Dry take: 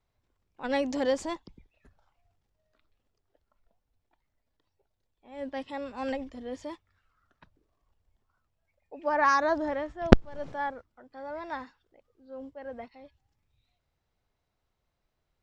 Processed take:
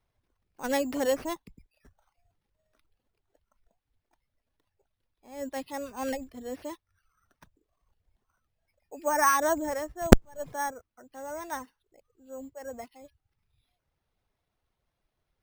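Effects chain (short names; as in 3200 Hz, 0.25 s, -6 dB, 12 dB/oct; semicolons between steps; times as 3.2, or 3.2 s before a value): reverb removal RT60 0.61 s; careless resampling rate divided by 6×, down none, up hold; gain +1 dB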